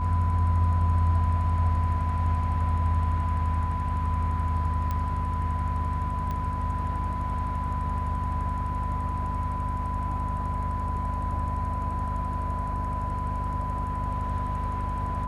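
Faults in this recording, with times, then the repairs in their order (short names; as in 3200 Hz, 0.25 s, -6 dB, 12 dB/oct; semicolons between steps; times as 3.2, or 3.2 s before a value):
hum 50 Hz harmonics 5 -32 dBFS
tone 1000 Hz -31 dBFS
4.91 pop -18 dBFS
6.31 pop -21 dBFS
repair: de-click; de-hum 50 Hz, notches 5; notch 1000 Hz, Q 30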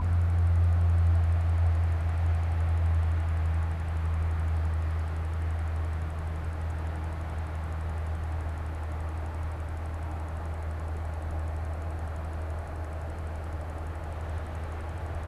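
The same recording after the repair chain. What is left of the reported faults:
4.91 pop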